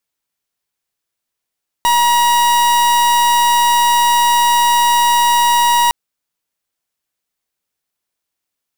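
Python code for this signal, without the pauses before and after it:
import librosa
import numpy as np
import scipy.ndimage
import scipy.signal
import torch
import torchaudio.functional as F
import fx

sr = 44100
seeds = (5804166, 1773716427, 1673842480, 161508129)

y = fx.pulse(sr, length_s=4.06, hz=955.0, level_db=-12.0, duty_pct=42)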